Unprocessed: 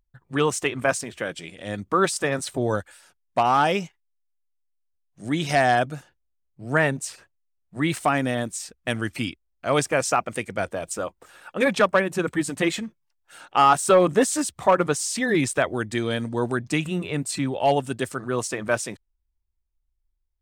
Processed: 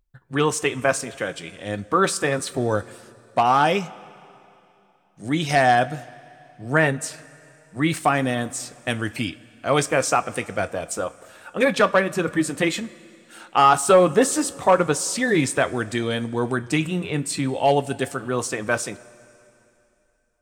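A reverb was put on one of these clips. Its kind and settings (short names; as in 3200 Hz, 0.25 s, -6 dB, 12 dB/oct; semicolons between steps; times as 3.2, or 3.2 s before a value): two-slope reverb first 0.2 s, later 2.9 s, from -20 dB, DRR 10.5 dB; gain +1.5 dB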